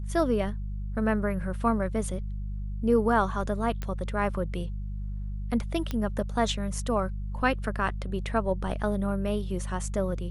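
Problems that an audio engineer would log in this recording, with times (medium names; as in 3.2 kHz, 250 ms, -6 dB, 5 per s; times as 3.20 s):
hum 50 Hz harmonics 4 -33 dBFS
3.82 s: pop -20 dBFS
5.91 s: pop -17 dBFS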